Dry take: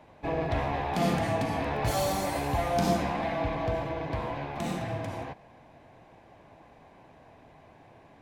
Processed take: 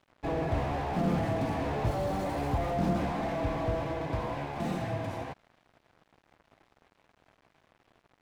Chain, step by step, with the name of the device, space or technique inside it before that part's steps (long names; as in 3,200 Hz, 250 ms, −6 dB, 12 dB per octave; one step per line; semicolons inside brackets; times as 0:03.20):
early transistor amplifier (dead-zone distortion −51 dBFS; slew-rate limiting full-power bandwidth 19 Hz)
level +1 dB